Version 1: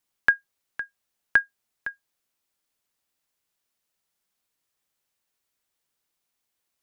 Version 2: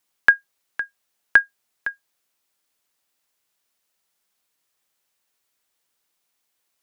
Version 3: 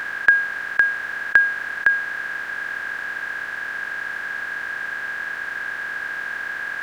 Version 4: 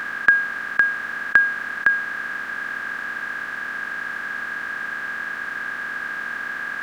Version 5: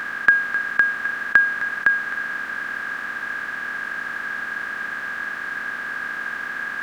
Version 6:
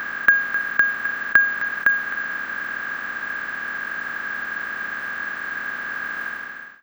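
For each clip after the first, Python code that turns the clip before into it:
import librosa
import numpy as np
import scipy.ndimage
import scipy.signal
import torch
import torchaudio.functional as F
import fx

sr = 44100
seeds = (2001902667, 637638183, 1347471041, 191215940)

y1 = fx.low_shelf(x, sr, hz=220.0, db=-7.5)
y1 = y1 * 10.0 ** (5.5 / 20.0)
y2 = fx.bin_compress(y1, sr, power=0.2)
y2 = y2 * 10.0 ** (-2.0 / 20.0)
y3 = fx.small_body(y2, sr, hz=(230.0, 1200.0), ring_ms=30, db=9)
y3 = y3 * 10.0 ** (-1.0 / 20.0)
y4 = y3 + 10.0 ** (-11.0 / 20.0) * np.pad(y3, (int(260 * sr / 1000.0), 0))[:len(y3)]
y5 = fx.fade_out_tail(y4, sr, length_s=0.59)
y5 = np.repeat(scipy.signal.resample_poly(y5, 1, 2), 2)[:len(y5)]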